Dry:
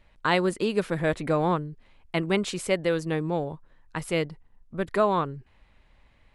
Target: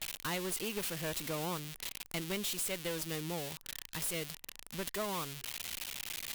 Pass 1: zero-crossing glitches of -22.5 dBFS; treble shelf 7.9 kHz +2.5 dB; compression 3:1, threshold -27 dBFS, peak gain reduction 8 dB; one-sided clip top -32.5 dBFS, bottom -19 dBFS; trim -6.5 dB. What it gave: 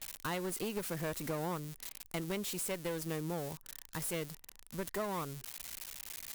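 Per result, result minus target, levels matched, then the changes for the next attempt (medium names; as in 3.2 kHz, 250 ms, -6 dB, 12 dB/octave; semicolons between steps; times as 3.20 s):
zero-crossing glitches: distortion -8 dB; 4 kHz band -5.0 dB
change: zero-crossing glitches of -14 dBFS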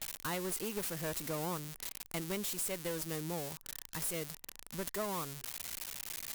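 4 kHz band -4.0 dB
add after compression: dynamic bell 3 kHz, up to +7 dB, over -49 dBFS, Q 1.1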